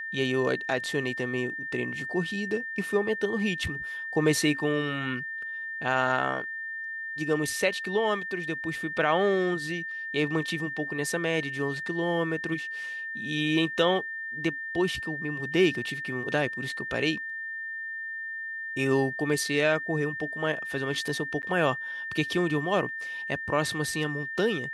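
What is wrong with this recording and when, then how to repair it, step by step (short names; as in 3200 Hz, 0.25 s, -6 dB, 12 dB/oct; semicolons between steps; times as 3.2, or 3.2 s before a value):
tone 1800 Hz -33 dBFS
21.42–21.43 gap 9.8 ms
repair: notch 1800 Hz, Q 30; interpolate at 21.42, 9.8 ms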